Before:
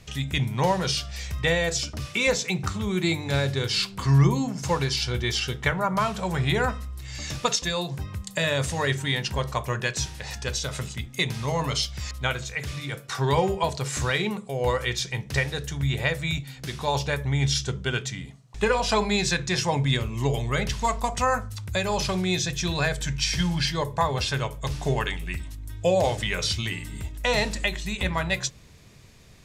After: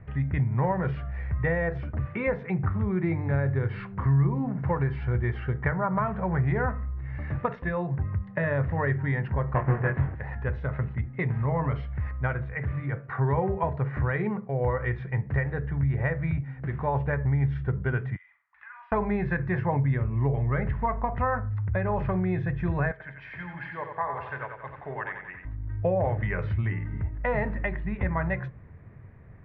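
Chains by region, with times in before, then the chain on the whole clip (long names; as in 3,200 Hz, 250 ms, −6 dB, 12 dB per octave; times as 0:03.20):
0:09.54–0:10.15: each half-wave held at its own peak + low-pass filter 3,400 Hz 24 dB per octave + double-tracking delay 22 ms −3.5 dB
0:18.16–0:18.92: inverse Chebyshev high-pass filter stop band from 480 Hz, stop band 50 dB + downward compressor 3 to 1, threshold −46 dBFS + flutter between parallel walls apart 7.7 metres, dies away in 0.39 s
0:22.91–0:25.45: high-pass filter 1,400 Hz 6 dB per octave + high-frequency loss of the air 68 metres + bucket-brigade delay 89 ms, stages 4,096, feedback 50%, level −6 dB
whole clip: Chebyshev low-pass filter 1,900 Hz, order 4; parametric band 100 Hz +8.5 dB 1.2 octaves; downward compressor 2.5 to 1, threshold −23 dBFS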